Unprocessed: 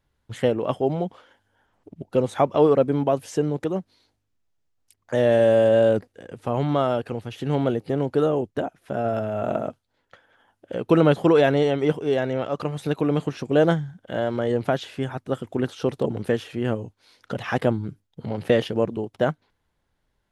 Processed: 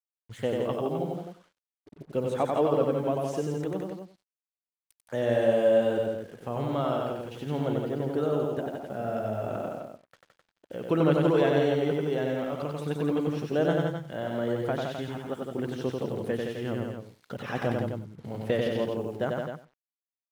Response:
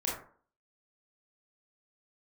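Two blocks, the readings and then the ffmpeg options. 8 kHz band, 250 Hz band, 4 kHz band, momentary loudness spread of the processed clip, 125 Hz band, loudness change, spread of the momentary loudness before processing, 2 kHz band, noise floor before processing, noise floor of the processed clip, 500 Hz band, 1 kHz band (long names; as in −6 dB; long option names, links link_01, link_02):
can't be measured, −5.5 dB, −5.5 dB, 13 LU, −5.5 dB, −5.5 dB, 14 LU, −5.5 dB, −74 dBFS, below −85 dBFS, −5.5 dB, −5.5 dB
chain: -filter_complex "[0:a]asplit=2[link_01][link_02];[link_02]aecho=0:1:93|186|279:0.708|0.113|0.0181[link_03];[link_01][link_03]amix=inputs=2:normalize=0,acrusher=bits=7:mix=0:aa=0.5,asplit=2[link_04][link_05];[link_05]aecho=0:1:166:0.562[link_06];[link_04][link_06]amix=inputs=2:normalize=0,volume=-8.5dB"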